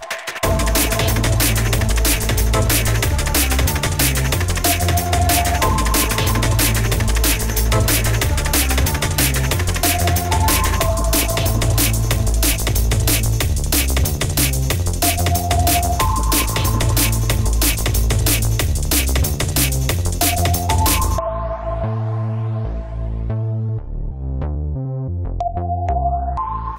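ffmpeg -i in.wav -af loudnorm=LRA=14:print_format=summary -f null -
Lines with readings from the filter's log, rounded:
Input Integrated:    -17.9 LUFS
Input True Peak:      -2.6 dBTP
Input LRA:             6.7 LU
Input Threshold:     -27.9 LUFS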